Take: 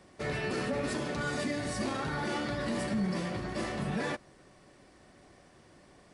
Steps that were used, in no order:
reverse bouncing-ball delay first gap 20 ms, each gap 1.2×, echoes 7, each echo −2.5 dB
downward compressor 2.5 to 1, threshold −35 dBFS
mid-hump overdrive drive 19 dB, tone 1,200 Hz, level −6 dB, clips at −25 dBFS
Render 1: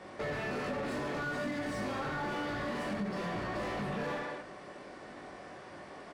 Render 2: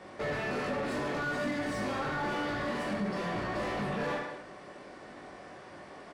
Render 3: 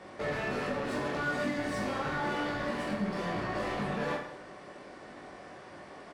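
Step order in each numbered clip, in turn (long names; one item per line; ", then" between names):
reverse bouncing-ball delay, then mid-hump overdrive, then downward compressor
downward compressor, then reverse bouncing-ball delay, then mid-hump overdrive
mid-hump overdrive, then downward compressor, then reverse bouncing-ball delay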